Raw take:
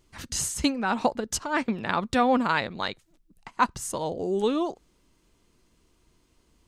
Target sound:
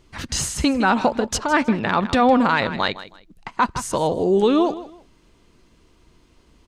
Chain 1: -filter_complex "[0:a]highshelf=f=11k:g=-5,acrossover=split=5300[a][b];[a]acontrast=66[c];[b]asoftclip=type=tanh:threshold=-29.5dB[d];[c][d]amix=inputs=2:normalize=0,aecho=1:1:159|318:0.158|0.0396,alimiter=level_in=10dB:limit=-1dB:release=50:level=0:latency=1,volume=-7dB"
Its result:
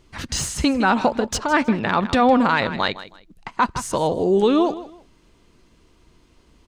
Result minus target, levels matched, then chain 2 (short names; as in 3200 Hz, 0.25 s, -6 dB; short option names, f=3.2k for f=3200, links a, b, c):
soft clip: distortion +13 dB
-filter_complex "[0:a]highshelf=f=11k:g=-5,acrossover=split=5300[a][b];[a]acontrast=66[c];[b]asoftclip=type=tanh:threshold=-20dB[d];[c][d]amix=inputs=2:normalize=0,aecho=1:1:159|318:0.158|0.0396,alimiter=level_in=10dB:limit=-1dB:release=50:level=0:latency=1,volume=-7dB"